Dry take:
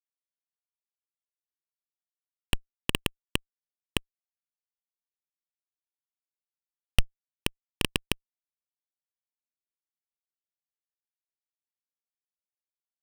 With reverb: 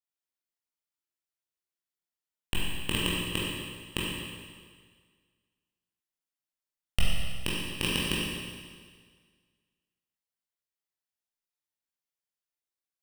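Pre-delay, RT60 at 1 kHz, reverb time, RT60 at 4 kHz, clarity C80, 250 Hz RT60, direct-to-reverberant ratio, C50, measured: 17 ms, 1.7 s, 1.7 s, 1.7 s, 0.5 dB, 1.7 s, -6.5 dB, -2.0 dB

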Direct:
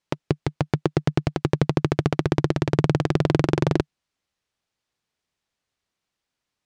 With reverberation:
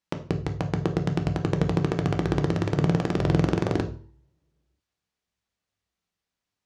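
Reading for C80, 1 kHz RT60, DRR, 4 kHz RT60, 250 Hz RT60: 17.0 dB, 0.50 s, 5.5 dB, 0.40 s, 0.50 s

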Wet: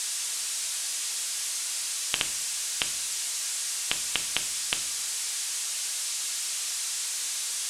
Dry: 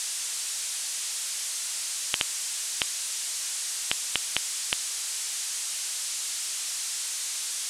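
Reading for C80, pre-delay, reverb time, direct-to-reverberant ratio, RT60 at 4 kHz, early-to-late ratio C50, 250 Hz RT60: 17.5 dB, 4 ms, 0.60 s, 6.0 dB, 0.40 s, 13.5 dB, 0.85 s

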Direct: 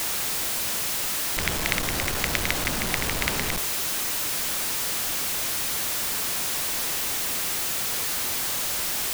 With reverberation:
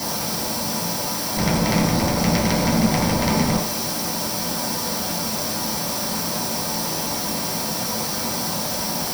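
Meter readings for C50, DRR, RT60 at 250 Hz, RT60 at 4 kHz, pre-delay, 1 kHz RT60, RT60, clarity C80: 8.5 dB, -4.0 dB, 0.55 s, no reading, 3 ms, 0.45 s, 0.45 s, 13.0 dB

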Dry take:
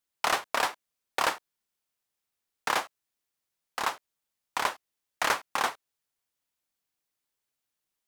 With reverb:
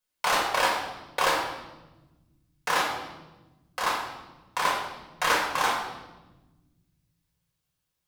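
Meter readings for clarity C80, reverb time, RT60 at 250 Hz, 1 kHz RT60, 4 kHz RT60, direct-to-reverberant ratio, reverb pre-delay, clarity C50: 5.5 dB, 1.1 s, 2.5 s, 0.95 s, 0.95 s, -3.0 dB, 4 ms, 3.0 dB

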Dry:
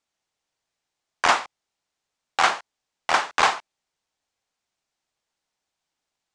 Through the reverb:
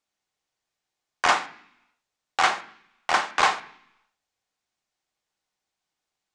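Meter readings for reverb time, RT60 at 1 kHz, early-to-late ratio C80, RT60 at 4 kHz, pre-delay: 0.70 s, 0.70 s, 18.5 dB, 0.90 s, 3 ms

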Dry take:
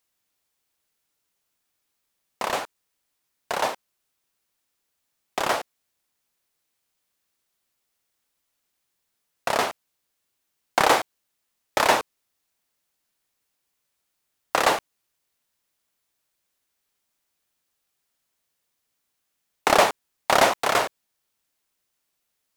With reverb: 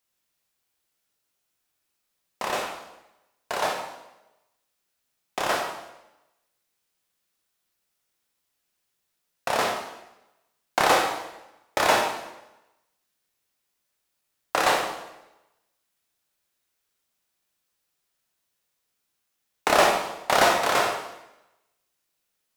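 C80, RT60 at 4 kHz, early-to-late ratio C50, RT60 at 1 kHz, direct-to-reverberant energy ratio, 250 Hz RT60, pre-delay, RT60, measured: 6.5 dB, 0.85 s, 4.5 dB, 0.90 s, 0.5 dB, 0.95 s, 7 ms, 0.95 s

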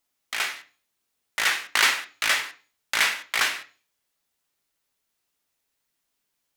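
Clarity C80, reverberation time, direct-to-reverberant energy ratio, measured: 20.5 dB, 0.40 s, 6.0 dB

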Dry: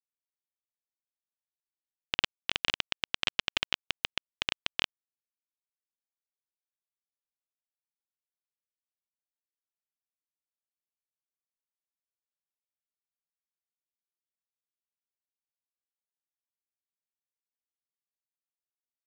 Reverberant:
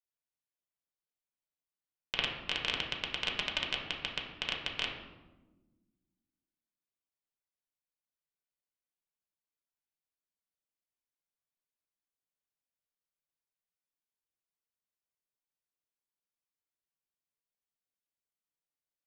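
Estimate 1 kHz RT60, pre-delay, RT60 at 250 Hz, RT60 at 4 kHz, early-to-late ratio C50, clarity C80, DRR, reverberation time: 1.0 s, 5 ms, 2.2 s, 0.70 s, 5.0 dB, 7.0 dB, -1.0 dB, 1.2 s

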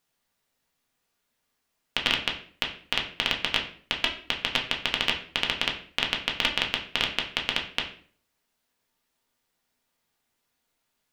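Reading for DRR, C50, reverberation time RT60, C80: 0.0 dB, 9.0 dB, 0.50 s, 13.0 dB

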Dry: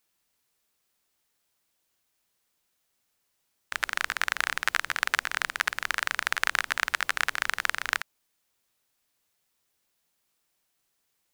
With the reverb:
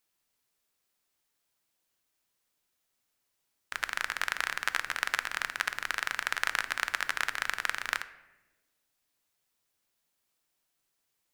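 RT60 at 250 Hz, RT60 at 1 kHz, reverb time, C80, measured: 1.6 s, 0.90 s, 1.1 s, 17.0 dB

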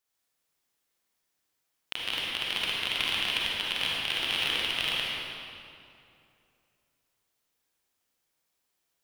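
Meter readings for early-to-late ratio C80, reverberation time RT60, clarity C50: -2.0 dB, 2.6 s, -4.0 dB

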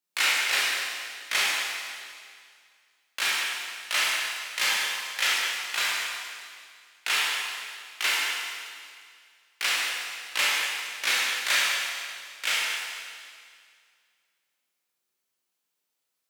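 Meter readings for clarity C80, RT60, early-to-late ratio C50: -0.5 dB, 2.1 s, -2.5 dB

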